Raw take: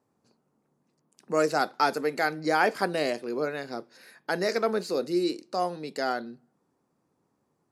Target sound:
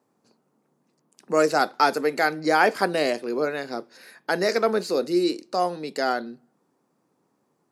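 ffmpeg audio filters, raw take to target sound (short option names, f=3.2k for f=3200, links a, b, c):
-af "highpass=160,volume=4.5dB"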